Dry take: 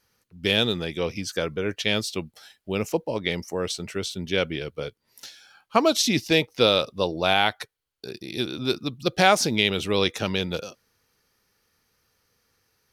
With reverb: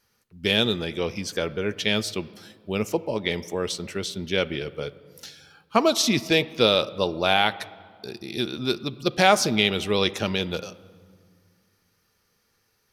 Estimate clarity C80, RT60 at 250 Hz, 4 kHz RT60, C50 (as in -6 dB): 19.0 dB, 2.5 s, 1.3 s, 18.0 dB